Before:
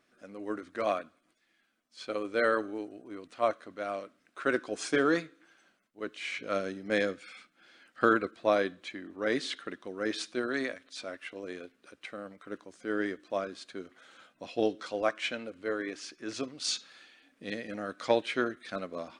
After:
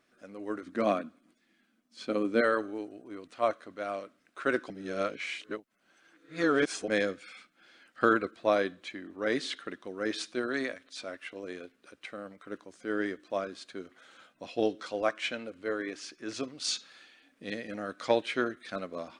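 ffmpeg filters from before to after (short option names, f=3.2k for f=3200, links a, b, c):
-filter_complex "[0:a]asettb=1/sr,asplit=3[a][b][c];[a]atrim=end=0.664[d];[b]atrim=start=0.66:end=2.41,asetpts=PTS-STARTPTS,afade=t=in:d=0.004:c=qsin,afade=t=out:st=1.746:d=0.004:c=qsin,equalizer=f=230:t=o:w=1.1:g=13[e];[c]atrim=start=2.406[f];[d][e]acrossfade=d=0.004:c1=hsin:c2=qsin[g];[g][f]acrossfade=d=0.004:c1=qsin:c2=hsin,asplit=3[h][i][j];[h]atrim=end=4.702[k];[i]atrim=start=4.698:end=6.882,asetpts=PTS-STARTPTS,areverse[l];[j]atrim=start=6.878[m];[k][l]acrossfade=d=0.004:c1=hsin:c2=hsin[n];[n][m]acrossfade=d=0.004:c1=hsin:c2=hsin"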